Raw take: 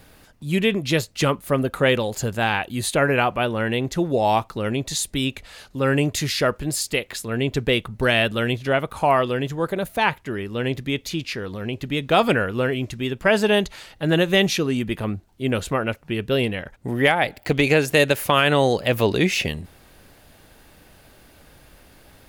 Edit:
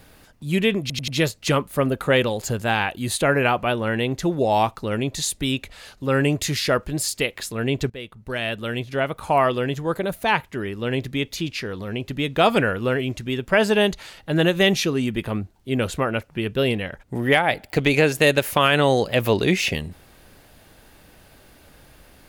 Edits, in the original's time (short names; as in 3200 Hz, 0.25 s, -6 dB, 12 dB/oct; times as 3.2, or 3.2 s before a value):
0.81 stutter 0.09 s, 4 plays
7.63–9.19 fade in, from -18.5 dB